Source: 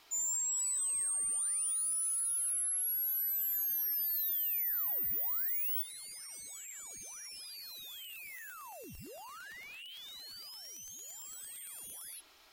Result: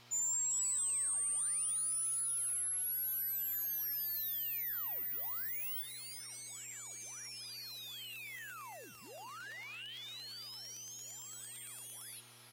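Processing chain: weighting filter A; buzz 120 Hz, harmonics 10, -66 dBFS -6 dB/oct; echo 0.381 s -12.5 dB

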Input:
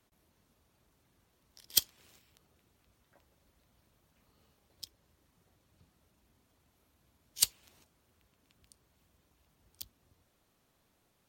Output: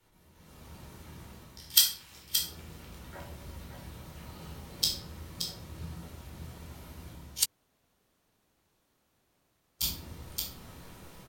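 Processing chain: 1.62–2.12 steep high-pass 780 Hz 72 dB/oct; AGC gain up to 15 dB; echo 0.575 s -7.5 dB; shoebox room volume 630 m³, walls furnished, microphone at 4.4 m; 7.43–9.82 room tone, crossfade 0.06 s

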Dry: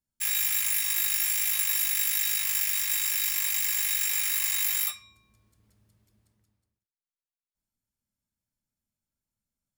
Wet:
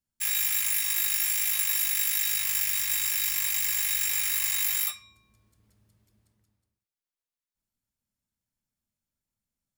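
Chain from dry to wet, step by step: 2.33–4.75 low shelf 160 Hz +10.5 dB

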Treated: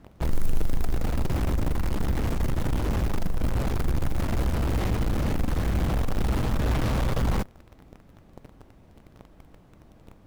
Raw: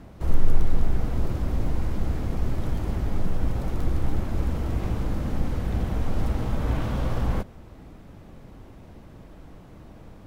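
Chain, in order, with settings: modulation noise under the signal 32 dB; in parallel at -4 dB: fuzz box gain 36 dB, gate -37 dBFS; on the sum: gain -7.5 dB

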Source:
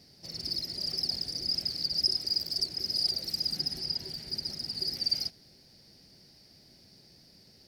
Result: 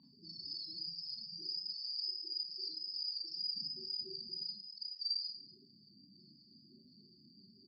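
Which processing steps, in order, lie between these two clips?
0.58–1.37 minimum comb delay 6.1 ms; high shelf 2600 Hz -2.5 dB; compressor 2:1, threshold -46 dBFS, peak gain reduction 12.5 dB; 4.53–4.99 requantised 6-bit, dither none; loudest bins only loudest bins 8; speaker cabinet 250–5700 Hz, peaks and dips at 310 Hz +5 dB, 530 Hz -10 dB, 980 Hz +10 dB, 1400 Hz -8 dB, 2200 Hz -7 dB, 5700 Hz -6 dB; echo 0.243 s -17.5 dB; Schroeder reverb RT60 0.37 s, combs from 28 ms, DRR -2 dB; gain +3 dB

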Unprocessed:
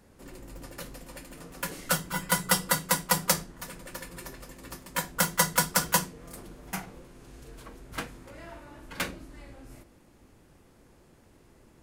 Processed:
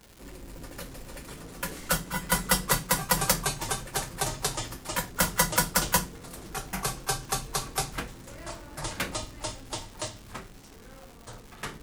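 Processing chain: octaver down 2 oct, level -3 dB; echoes that change speed 0.293 s, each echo -4 st, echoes 2, each echo -6 dB; crackle 370/s -40 dBFS

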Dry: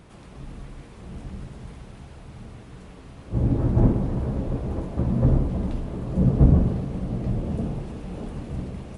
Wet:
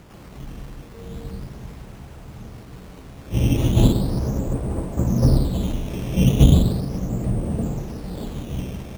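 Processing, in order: decimation with a swept rate 10×, swing 100% 0.37 Hz; 0.93–1.39 whine 460 Hz -44 dBFS; gain +3 dB

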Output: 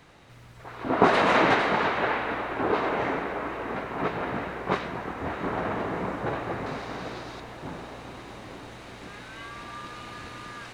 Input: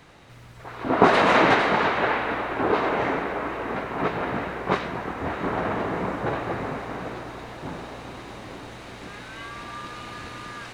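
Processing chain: 6.66–7.4 bell 4700 Hz +9 dB 1.2 oct; gain -3 dB

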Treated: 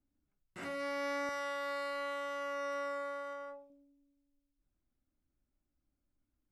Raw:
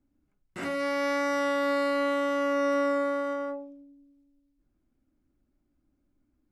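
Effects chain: bell 290 Hz -3.5 dB 1.3 oct, from 1.29 s -14.5 dB, from 3.7 s -7 dB; gain -8 dB

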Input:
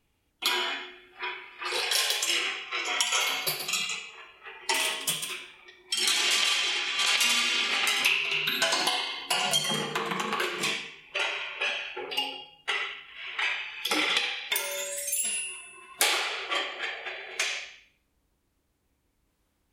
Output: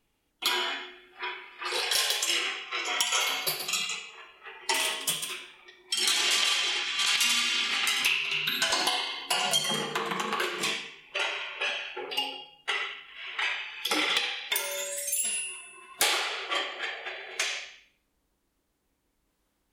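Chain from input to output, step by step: bell 82 Hz -9.5 dB 1.2 oct, from 6.83 s 540 Hz, from 8.7 s 88 Hz; wavefolder -12.5 dBFS; bell 2400 Hz -2.5 dB 0.25 oct

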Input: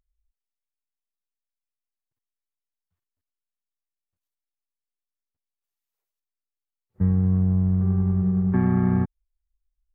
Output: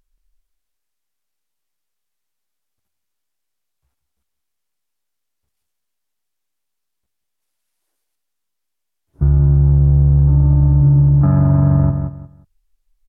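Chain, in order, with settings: de-hum 55.41 Hz, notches 2; varispeed -24%; feedback echo 0.178 s, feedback 24%, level -11.5 dB; maximiser +16.5 dB; gain -4.5 dB

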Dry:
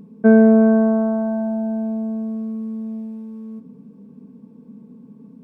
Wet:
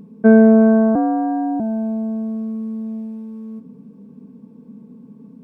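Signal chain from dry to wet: 0.95–1.6 frequency shift +62 Hz; gain +1.5 dB

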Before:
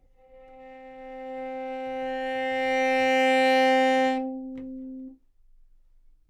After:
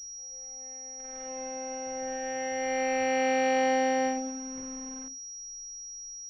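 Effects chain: in parallel at -5 dB: bit-crush 6-bit; on the sum: pulse-width modulation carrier 5700 Hz; gain -8.5 dB

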